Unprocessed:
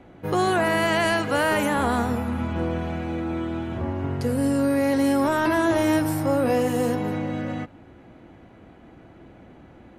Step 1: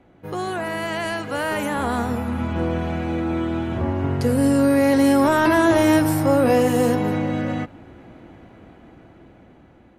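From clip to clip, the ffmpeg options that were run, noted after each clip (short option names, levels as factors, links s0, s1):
-af "dynaudnorm=f=620:g=7:m=4.47,volume=0.531"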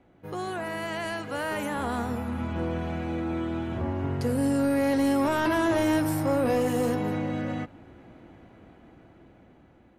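-af "asoftclip=type=tanh:threshold=0.282,volume=0.501"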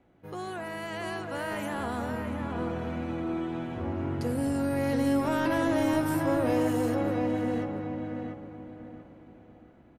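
-filter_complex "[0:a]asplit=2[s0][s1];[s1]adelay=685,lowpass=f=1800:p=1,volume=0.708,asplit=2[s2][s3];[s3]adelay=685,lowpass=f=1800:p=1,volume=0.34,asplit=2[s4][s5];[s5]adelay=685,lowpass=f=1800:p=1,volume=0.34,asplit=2[s6][s7];[s7]adelay=685,lowpass=f=1800:p=1,volume=0.34[s8];[s0][s2][s4][s6][s8]amix=inputs=5:normalize=0,volume=0.631"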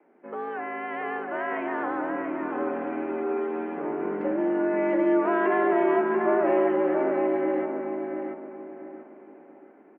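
-af "highpass=f=160:t=q:w=0.5412,highpass=f=160:t=q:w=1.307,lowpass=f=2300:t=q:w=0.5176,lowpass=f=2300:t=q:w=0.7071,lowpass=f=2300:t=q:w=1.932,afreqshift=67,volume=1.58"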